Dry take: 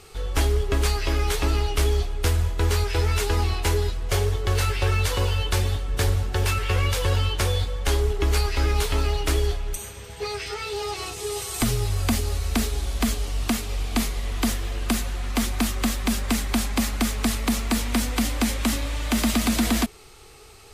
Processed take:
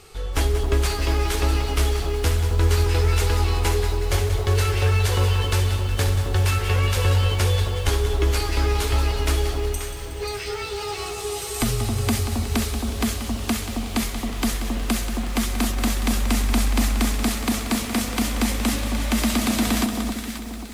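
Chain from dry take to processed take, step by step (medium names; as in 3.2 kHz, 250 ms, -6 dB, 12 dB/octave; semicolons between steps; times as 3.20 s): echo whose repeats swap between lows and highs 267 ms, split 1.1 kHz, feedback 62%, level -5 dB; bit-crushed delay 183 ms, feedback 55%, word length 7-bit, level -10 dB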